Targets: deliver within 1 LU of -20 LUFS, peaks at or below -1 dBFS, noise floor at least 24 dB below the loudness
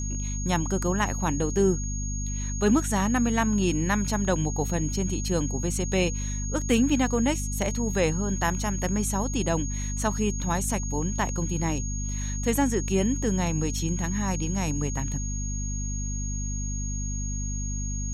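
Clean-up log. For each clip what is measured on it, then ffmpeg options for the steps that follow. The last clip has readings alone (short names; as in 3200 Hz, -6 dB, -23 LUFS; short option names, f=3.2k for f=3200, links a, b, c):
hum 50 Hz; harmonics up to 250 Hz; hum level -28 dBFS; steady tone 6600 Hz; tone level -35 dBFS; loudness -27.0 LUFS; peak -10.5 dBFS; loudness target -20.0 LUFS
-> -af "bandreject=f=50:t=h:w=4,bandreject=f=100:t=h:w=4,bandreject=f=150:t=h:w=4,bandreject=f=200:t=h:w=4,bandreject=f=250:t=h:w=4"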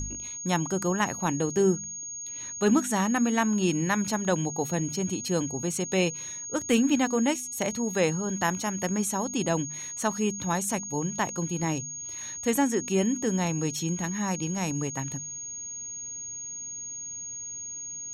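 hum none; steady tone 6600 Hz; tone level -35 dBFS
-> -af "bandreject=f=6.6k:w=30"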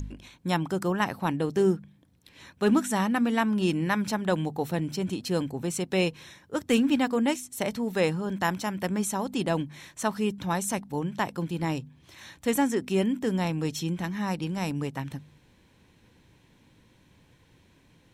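steady tone none; loudness -28.0 LUFS; peak -11.0 dBFS; loudness target -20.0 LUFS
-> -af "volume=8dB"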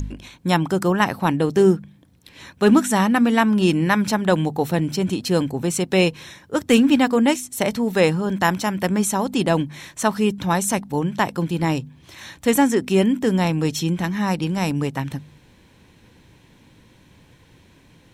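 loudness -20.0 LUFS; peak -3.0 dBFS; noise floor -53 dBFS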